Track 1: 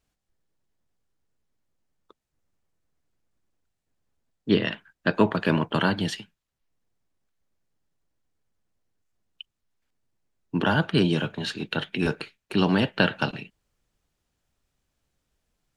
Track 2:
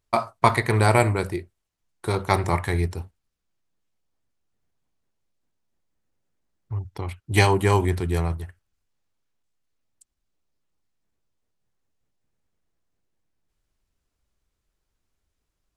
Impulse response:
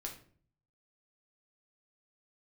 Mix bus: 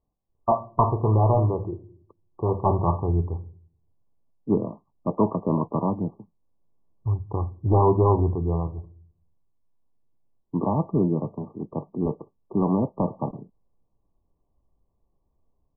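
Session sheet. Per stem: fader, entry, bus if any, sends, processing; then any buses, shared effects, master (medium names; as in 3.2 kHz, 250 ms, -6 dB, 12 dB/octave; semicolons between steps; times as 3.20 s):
0.0 dB, 0.00 s, no send, peaking EQ 4.6 kHz +12.5 dB 1.1 oct
+3.0 dB, 0.35 s, send -10 dB, auto duck -11 dB, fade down 1.80 s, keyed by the first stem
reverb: on, RT60 0.50 s, pre-delay 6 ms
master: hard clipper -12.5 dBFS, distortion -11 dB; brick-wall FIR low-pass 1.2 kHz; tape noise reduction on one side only decoder only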